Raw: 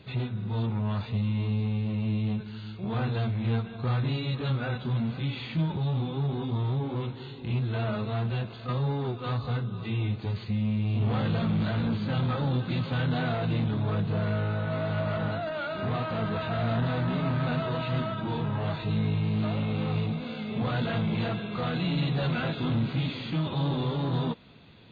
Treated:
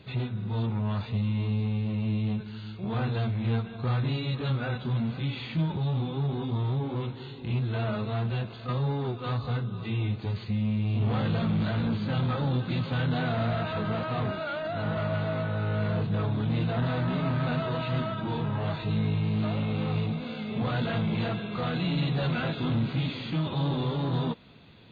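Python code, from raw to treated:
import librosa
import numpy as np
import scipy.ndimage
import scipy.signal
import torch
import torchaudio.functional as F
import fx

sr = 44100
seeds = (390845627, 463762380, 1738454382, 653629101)

y = fx.edit(x, sr, fx.reverse_span(start_s=13.37, length_s=3.4), tone=tone)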